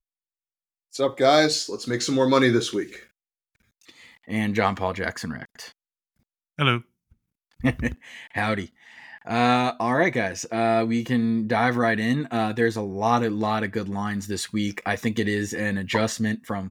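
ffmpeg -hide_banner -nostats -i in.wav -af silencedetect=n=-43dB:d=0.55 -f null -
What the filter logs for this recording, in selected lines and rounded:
silence_start: 0.00
silence_end: 0.93 | silence_duration: 0.93
silence_start: 3.04
silence_end: 3.89 | silence_duration: 0.85
silence_start: 5.71
silence_end: 6.58 | silence_duration: 0.87
silence_start: 6.81
silence_end: 7.60 | silence_duration: 0.79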